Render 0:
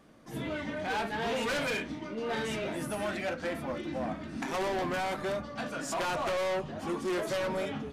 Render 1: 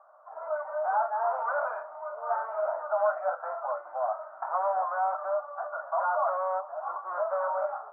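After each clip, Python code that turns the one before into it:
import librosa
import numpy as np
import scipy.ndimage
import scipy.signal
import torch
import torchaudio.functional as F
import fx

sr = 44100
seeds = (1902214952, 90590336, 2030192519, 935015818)

y = scipy.signal.sosfilt(scipy.signal.cheby1(4, 1.0, [600.0, 1400.0], 'bandpass', fs=sr, output='sos'), x)
y = fx.rider(y, sr, range_db=10, speed_s=2.0)
y = y * librosa.db_to_amplitude(7.5)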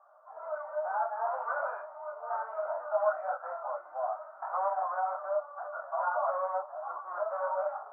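y = fx.detune_double(x, sr, cents=22)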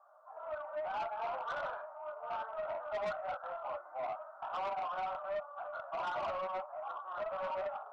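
y = 10.0 ** (-30.5 / 20.0) * np.tanh(x / 10.0 ** (-30.5 / 20.0))
y = y * librosa.db_to_amplitude(-2.5)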